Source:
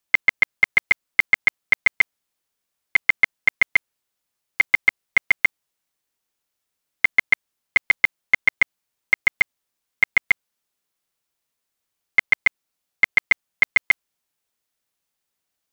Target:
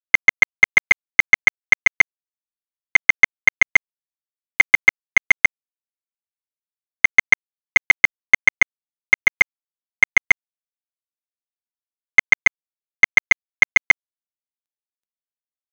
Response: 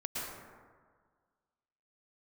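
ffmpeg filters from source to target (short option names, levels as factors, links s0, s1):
-af "areverse,acompressor=mode=upward:threshold=0.0562:ratio=2.5,areverse,aresample=11025,aresample=44100,acontrast=39,aeval=exprs='sgn(val(0))*max(abs(val(0))-0.0119,0)':c=same,volume=1.12"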